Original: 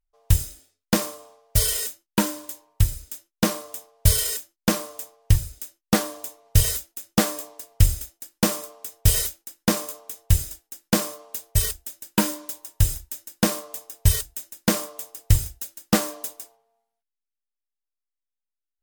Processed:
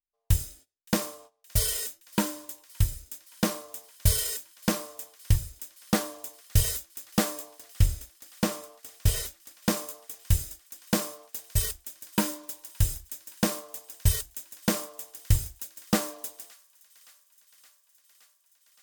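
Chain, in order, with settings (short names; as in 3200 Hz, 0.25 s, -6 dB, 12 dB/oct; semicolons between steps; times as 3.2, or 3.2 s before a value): gate -46 dBFS, range -17 dB; 7.53–9.55 high shelf 5600 Hz -6 dB; thin delay 0.569 s, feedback 77%, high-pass 1700 Hz, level -23 dB; gain -5 dB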